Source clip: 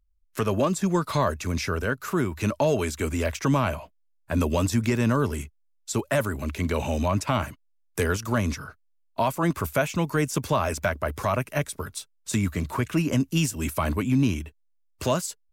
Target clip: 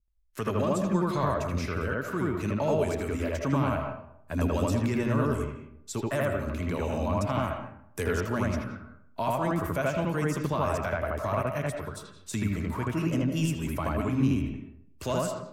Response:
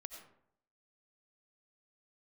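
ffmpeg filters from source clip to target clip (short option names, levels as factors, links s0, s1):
-filter_complex "[0:a]asplit=2[s0][s1];[1:a]atrim=start_sample=2205,lowpass=2800,adelay=80[s2];[s1][s2]afir=irnorm=-1:irlink=0,volume=2.24[s3];[s0][s3]amix=inputs=2:normalize=0,adynamicequalizer=threshold=0.0112:dfrequency=1700:dqfactor=0.7:tfrequency=1700:tqfactor=0.7:attack=5:release=100:ratio=0.375:range=1.5:mode=cutabove:tftype=highshelf,volume=0.447"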